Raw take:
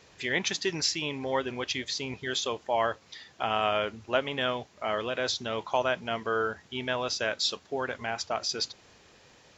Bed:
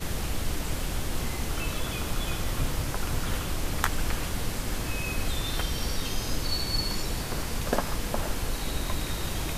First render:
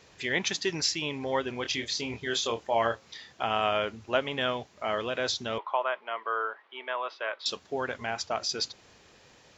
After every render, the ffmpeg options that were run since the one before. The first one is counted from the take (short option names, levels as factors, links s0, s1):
-filter_complex "[0:a]asettb=1/sr,asplit=3[s0][s1][s2];[s0]atrim=end=1.624[s3];[s1]atrim=start=1.62:end=3.33,asetpts=PTS-STARTPTS,afade=t=in:d=0.004:c=qsin,afade=t=out:st=1.706:d=0.004:c=qsin,asplit=2[s4][s5];[s5]adelay=26,volume=0.501[s6];[s4][s6]amix=inputs=2:normalize=0,atrim=end_sample=75411[s7];[s2]atrim=start=3.326[s8];[s3][s7]acrossfade=d=0.004:c1=hsin:c2=qsin[s9];[s9][s8]acrossfade=d=0.004:c1=qsin:c2=hsin,asettb=1/sr,asplit=3[s10][s11][s12];[s10]atrim=end=5.584[s13];[s11]atrim=start=5.58:end=7.46,asetpts=PTS-STARTPTS,afade=t=in:d=0.004:c=qsin,afade=t=out:st=1.876:d=0.004:c=qsin,highpass=f=460:w=0.5412,highpass=f=460:w=1.3066,equalizer=f=480:t=q:w=4:g=-5,equalizer=f=720:t=q:w=4:g=-4,equalizer=f=1100:t=q:w=4:g=6,equalizer=f=1600:t=q:w=4:g=-3,equalizer=f=2600:t=q:w=4:g=-4,lowpass=f=2800:w=0.5412,lowpass=f=2800:w=1.3066[s14];[s12]atrim=start=7.456[s15];[s13][s14]acrossfade=d=0.004:c1=hsin:c2=qsin[s16];[s16][s15]acrossfade=d=0.004:c1=qsin:c2=hsin"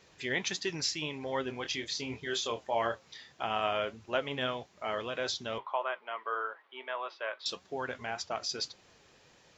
-af "flanger=delay=5:depth=3.1:regen=70:speed=1.7:shape=triangular"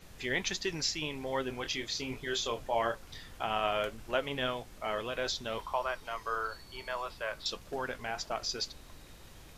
-filter_complex "[1:a]volume=0.075[s0];[0:a][s0]amix=inputs=2:normalize=0"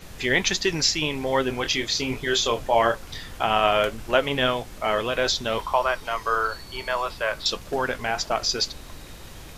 -af "volume=3.55"